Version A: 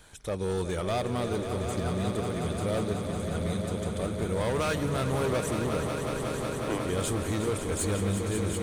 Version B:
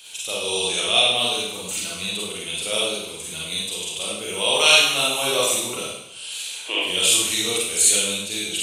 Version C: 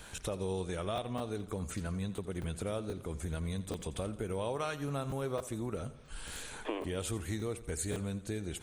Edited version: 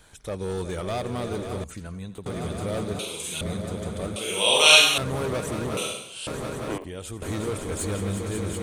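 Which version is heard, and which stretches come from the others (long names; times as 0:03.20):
A
0:01.64–0:02.26: punch in from C
0:02.99–0:03.41: punch in from B
0:04.16–0:04.98: punch in from B
0:05.77–0:06.27: punch in from B
0:06.78–0:07.22: punch in from C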